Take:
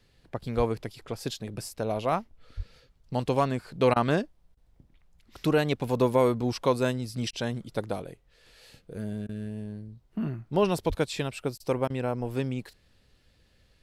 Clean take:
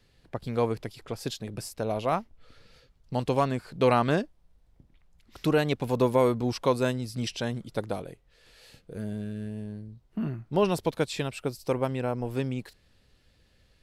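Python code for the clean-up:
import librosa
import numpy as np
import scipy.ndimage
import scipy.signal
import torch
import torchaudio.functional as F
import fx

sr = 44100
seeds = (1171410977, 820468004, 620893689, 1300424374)

y = fx.fix_deplosive(x, sr, at_s=(0.56, 2.56, 10.88))
y = fx.fix_interpolate(y, sr, at_s=(3.94, 4.55, 7.31, 9.27, 11.58, 11.88), length_ms=19.0)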